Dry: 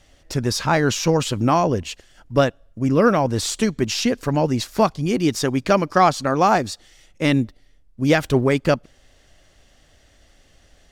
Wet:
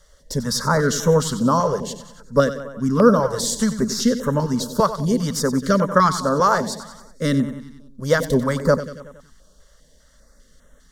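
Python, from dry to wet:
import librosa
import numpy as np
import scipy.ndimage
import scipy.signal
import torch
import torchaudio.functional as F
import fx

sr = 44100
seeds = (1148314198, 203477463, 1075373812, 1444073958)

y = fx.fixed_phaser(x, sr, hz=500.0, stages=8)
y = fx.echo_feedback(y, sr, ms=93, feedback_pct=57, wet_db=-12.0)
y = fx.filter_held_notch(y, sr, hz=5.0, low_hz=240.0, high_hz=4700.0)
y = y * 10.0 ** (4.0 / 20.0)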